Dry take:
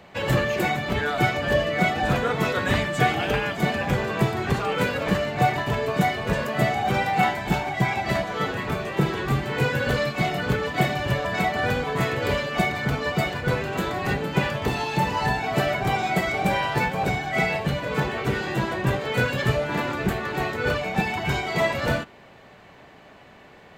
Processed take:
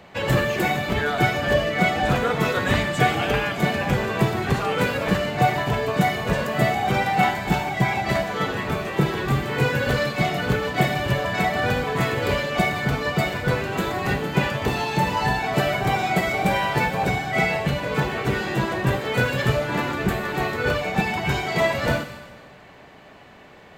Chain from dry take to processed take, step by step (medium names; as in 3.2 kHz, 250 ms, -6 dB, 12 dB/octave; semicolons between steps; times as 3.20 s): on a send: treble shelf 5.7 kHz +12 dB + reverberation RT60 1.6 s, pre-delay 15 ms, DRR 12 dB; on the sum: trim +1.5 dB